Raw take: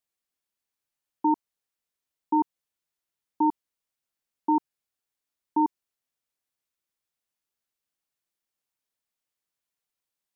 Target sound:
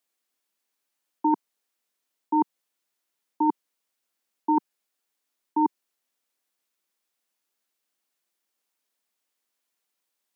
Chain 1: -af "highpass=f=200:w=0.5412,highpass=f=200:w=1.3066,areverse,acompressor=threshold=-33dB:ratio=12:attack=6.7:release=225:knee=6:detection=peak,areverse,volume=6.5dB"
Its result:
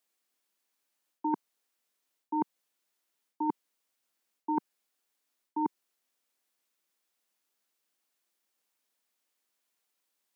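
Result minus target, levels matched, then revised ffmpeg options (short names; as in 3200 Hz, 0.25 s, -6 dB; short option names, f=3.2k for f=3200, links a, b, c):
compressor: peak gain reduction +8.5 dB
-af "highpass=f=200:w=0.5412,highpass=f=200:w=1.3066,areverse,acompressor=threshold=-23.5dB:ratio=12:attack=6.7:release=225:knee=6:detection=peak,areverse,volume=6.5dB"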